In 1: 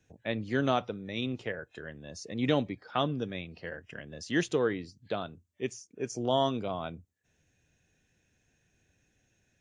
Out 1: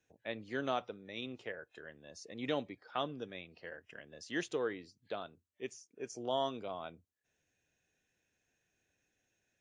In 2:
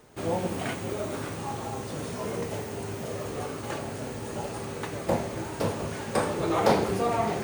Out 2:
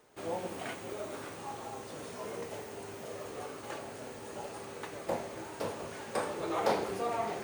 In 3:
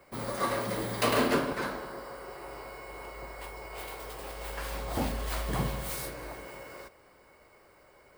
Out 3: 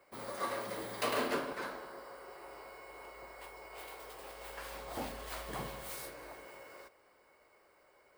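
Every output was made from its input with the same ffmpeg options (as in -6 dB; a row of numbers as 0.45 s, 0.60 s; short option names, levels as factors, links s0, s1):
-af "bass=f=250:g=-10,treble=f=4000:g=-1,volume=0.473"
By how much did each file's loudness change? -8.0 LU, -8.0 LU, -8.0 LU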